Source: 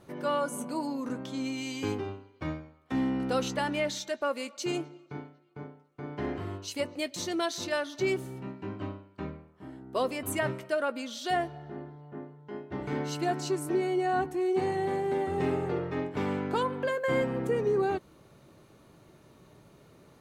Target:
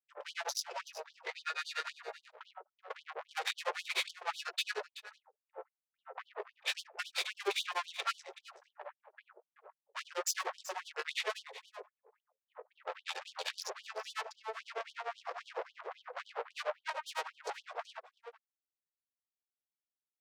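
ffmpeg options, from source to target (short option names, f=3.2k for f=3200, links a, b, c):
-af "agate=range=-44dB:threshold=-46dB:ratio=16:detection=peak,anlmdn=0.0251,asetrate=26222,aresample=44100,atempo=1.68179,adynamicequalizer=threshold=0.00447:dfrequency=340:dqfactor=7.8:tfrequency=340:tqfactor=7.8:attack=5:release=100:ratio=0.375:range=2.5:mode=boostabove:tftype=bell,flanger=delay=18.5:depth=7.2:speed=0.17,aeval=exprs='(tanh(112*val(0)+0.6)-tanh(0.6))/112':c=same,tremolo=f=10:d=1,aecho=1:1:379:0.178,afftfilt=real='re*gte(b*sr/1024,380*pow(3000/380,0.5+0.5*sin(2*PI*3.7*pts/sr)))':imag='im*gte(b*sr/1024,380*pow(3000/380,0.5+0.5*sin(2*PI*3.7*pts/sr)))':win_size=1024:overlap=0.75,volume=16dB"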